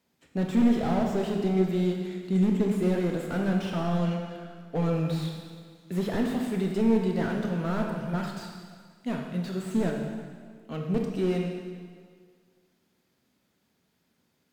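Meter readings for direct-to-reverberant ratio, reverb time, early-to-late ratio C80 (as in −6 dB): 1.5 dB, 1.9 s, 5.0 dB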